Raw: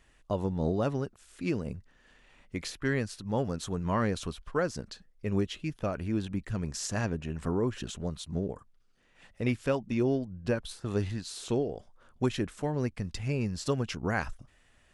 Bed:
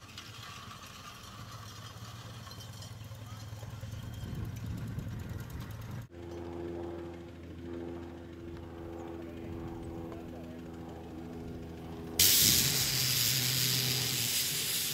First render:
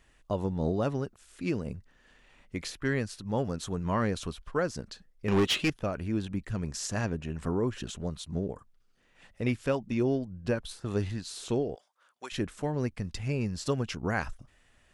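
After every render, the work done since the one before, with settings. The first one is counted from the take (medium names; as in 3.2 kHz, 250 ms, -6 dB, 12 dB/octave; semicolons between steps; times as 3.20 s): 5.28–5.70 s: overdrive pedal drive 26 dB, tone 6.3 kHz, clips at -16.5 dBFS; 11.75–12.32 s: Bessel high-pass 1.2 kHz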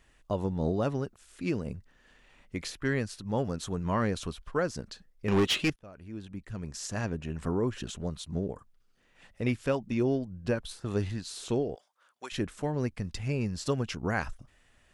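5.76–7.33 s: fade in linear, from -23 dB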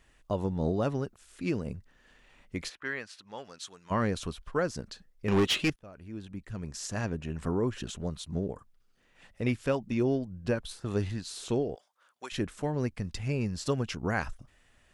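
2.68–3.90 s: band-pass filter 1.3 kHz -> 5.6 kHz, Q 0.68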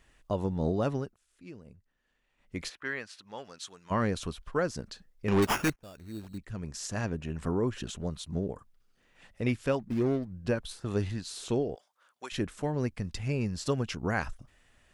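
0.96–2.61 s: dip -16 dB, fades 0.24 s; 5.42–6.38 s: sample-rate reducer 4.1 kHz; 9.79–10.33 s: median filter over 41 samples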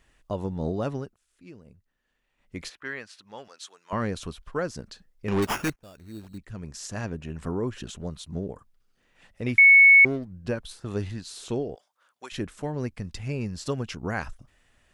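3.48–3.93 s: high-pass 460 Hz; 9.58–10.05 s: bleep 2.21 kHz -10 dBFS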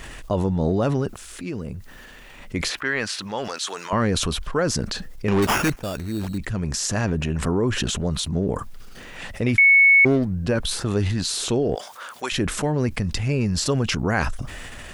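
transient shaper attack 0 dB, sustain +6 dB; level flattener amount 50%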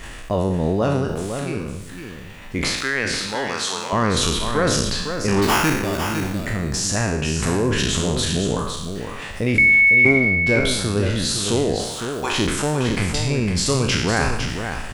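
spectral sustain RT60 0.85 s; on a send: delay 506 ms -7.5 dB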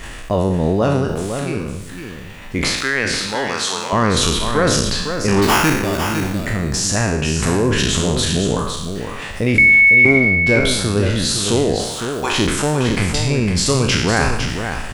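trim +3.5 dB; peak limiter -1 dBFS, peak gain reduction 2 dB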